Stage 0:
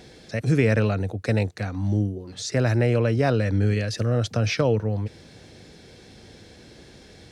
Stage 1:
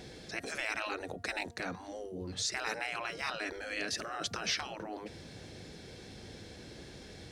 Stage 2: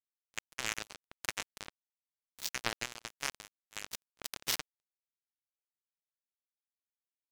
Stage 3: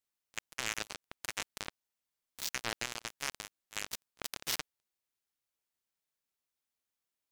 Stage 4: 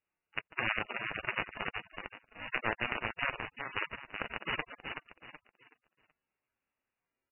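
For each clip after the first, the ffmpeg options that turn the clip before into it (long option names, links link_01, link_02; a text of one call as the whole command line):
ffmpeg -i in.wav -af "afftfilt=real='re*lt(hypot(re,im),0.126)':imag='im*lt(hypot(re,im),0.126)':win_size=1024:overlap=0.75,bandreject=frequency=234.4:width_type=h:width=4,bandreject=frequency=468.8:width_type=h:width=4,bandreject=frequency=703.2:width_type=h:width=4,bandreject=frequency=937.6:width_type=h:width=4,bandreject=frequency=1172:width_type=h:width=4,bandreject=frequency=1406.4:width_type=h:width=4,bandreject=frequency=1640.8:width_type=h:width=4,bandreject=frequency=1875.2:width_type=h:width=4,volume=-1.5dB" out.wav
ffmpeg -i in.wav -af "acrusher=bits=3:mix=0:aa=0.5,volume=7.5dB" out.wav
ffmpeg -i in.wav -af "alimiter=limit=-21.5dB:level=0:latency=1:release=31,volume=6dB" out.wav
ffmpeg -i in.wav -filter_complex "[0:a]asplit=2[link_01][link_02];[link_02]aecho=0:1:376|752|1128|1504:0.501|0.15|0.0451|0.0135[link_03];[link_01][link_03]amix=inputs=2:normalize=0,volume=6dB" -ar 11025 -c:a libmp3lame -b:a 8k out.mp3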